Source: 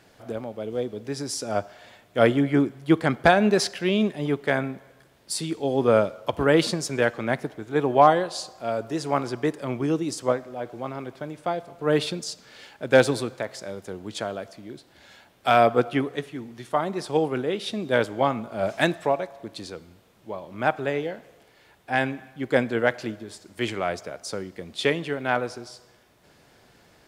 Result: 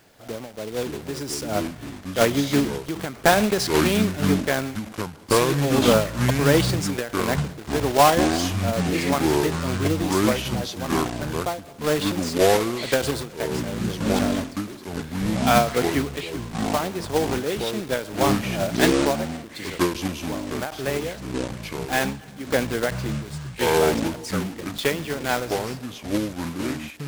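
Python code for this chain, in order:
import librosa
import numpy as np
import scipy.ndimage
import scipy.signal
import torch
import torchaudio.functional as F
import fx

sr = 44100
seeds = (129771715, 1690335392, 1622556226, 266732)

y = fx.block_float(x, sr, bits=3)
y = fx.echo_pitch(y, sr, ms=432, semitones=-7, count=2, db_per_echo=-3.0)
y = fx.end_taper(y, sr, db_per_s=130.0)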